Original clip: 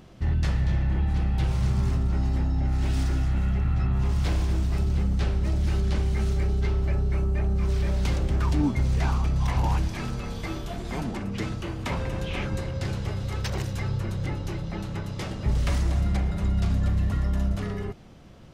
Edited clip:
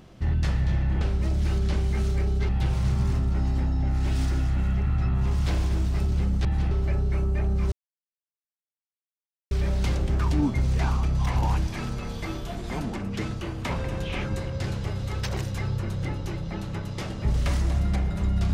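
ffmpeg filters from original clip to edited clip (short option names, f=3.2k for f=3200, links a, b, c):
-filter_complex "[0:a]asplit=6[a][b][c][d][e][f];[a]atrim=end=1.012[g];[b]atrim=start=5.228:end=6.712[h];[c]atrim=start=1.268:end=5.232[i];[d]atrim=start=1.008:end=1.272[j];[e]atrim=start=6.708:end=7.72,asetpts=PTS-STARTPTS,afade=t=out:st=1.008:d=0.004:c=hsin,apad=pad_dur=1.79[k];[f]atrim=start=7.72,asetpts=PTS-STARTPTS,afade=t=in:d=0.004:c=hsin[l];[g][h]acrossfade=d=0.004:c1=hsin:c2=hsin[m];[m][i]acrossfade=d=0.004:c1=hsin:c2=hsin[n];[n][j]acrossfade=d=0.004:c1=hsin:c2=hsin[o];[k][l]concat=n=2:v=0:a=1[p];[o][p]acrossfade=d=0.004:c1=hsin:c2=hsin"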